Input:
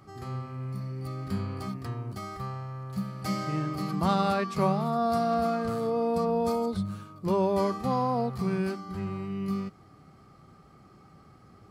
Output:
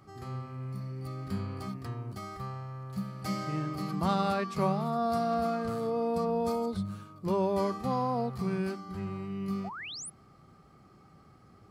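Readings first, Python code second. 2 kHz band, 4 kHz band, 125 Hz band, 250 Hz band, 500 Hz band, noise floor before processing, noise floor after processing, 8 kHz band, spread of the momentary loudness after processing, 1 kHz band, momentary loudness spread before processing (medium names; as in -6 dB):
-2.0 dB, -1.5 dB, -3.0 dB, -3.0 dB, -3.0 dB, -55 dBFS, -58 dBFS, +1.5 dB, 11 LU, -3.0 dB, 11 LU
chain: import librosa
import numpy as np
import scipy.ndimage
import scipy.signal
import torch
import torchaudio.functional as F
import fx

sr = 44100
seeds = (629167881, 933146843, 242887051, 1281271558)

y = fx.spec_paint(x, sr, seeds[0], shape='rise', start_s=9.64, length_s=0.46, low_hz=630.0, high_hz=11000.0, level_db=-38.0)
y = y * 10.0 ** (-3.0 / 20.0)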